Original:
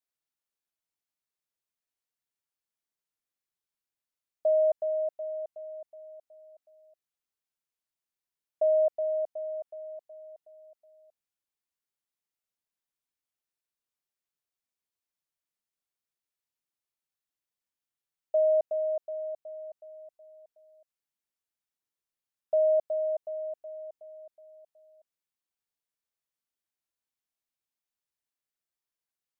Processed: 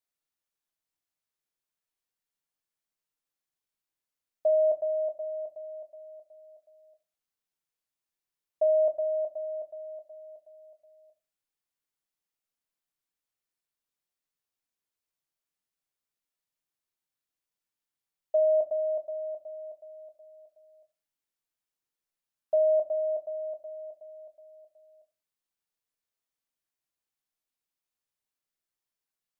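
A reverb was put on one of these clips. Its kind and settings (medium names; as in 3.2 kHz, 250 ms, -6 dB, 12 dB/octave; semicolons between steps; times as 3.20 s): simulated room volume 130 m³, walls furnished, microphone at 0.53 m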